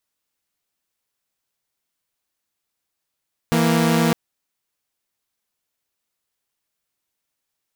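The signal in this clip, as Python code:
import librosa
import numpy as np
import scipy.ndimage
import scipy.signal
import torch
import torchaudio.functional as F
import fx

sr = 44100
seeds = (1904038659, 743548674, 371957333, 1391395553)

y = fx.chord(sr, length_s=0.61, notes=(52, 58), wave='saw', level_db=-15.5)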